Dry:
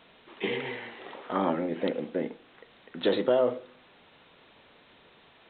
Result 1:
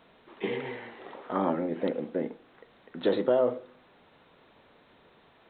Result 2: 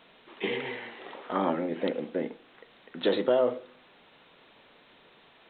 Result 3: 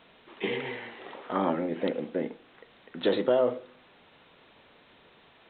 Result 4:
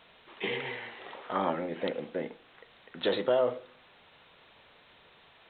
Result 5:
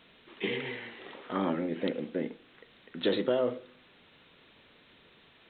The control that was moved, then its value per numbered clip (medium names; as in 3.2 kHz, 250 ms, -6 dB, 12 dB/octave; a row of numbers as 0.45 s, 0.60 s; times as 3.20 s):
peaking EQ, frequency: 3 kHz, 76 Hz, 14 kHz, 270 Hz, 790 Hz